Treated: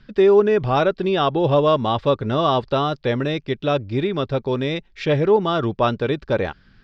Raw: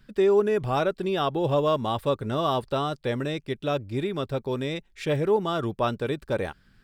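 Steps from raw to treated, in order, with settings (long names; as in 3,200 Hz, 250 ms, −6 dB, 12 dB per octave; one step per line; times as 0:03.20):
inverse Chebyshev low-pass filter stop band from 9,700 Hz, stop band 40 dB
level +6.5 dB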